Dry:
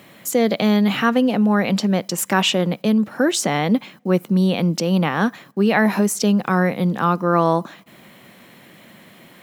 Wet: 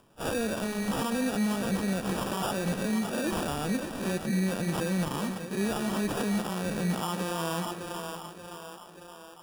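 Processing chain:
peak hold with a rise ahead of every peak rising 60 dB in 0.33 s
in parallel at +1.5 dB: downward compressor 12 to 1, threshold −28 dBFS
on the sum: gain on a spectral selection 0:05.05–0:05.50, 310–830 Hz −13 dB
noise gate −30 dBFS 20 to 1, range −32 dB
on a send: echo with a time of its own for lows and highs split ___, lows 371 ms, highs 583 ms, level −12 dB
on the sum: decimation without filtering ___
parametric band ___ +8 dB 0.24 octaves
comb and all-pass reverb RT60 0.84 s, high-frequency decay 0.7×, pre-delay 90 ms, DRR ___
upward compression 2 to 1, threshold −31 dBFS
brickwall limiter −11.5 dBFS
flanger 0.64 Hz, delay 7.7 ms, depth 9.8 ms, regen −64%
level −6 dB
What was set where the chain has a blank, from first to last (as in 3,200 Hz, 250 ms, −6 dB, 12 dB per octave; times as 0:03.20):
310 Hz, 21×, 10,000 Hz, 17.5 dB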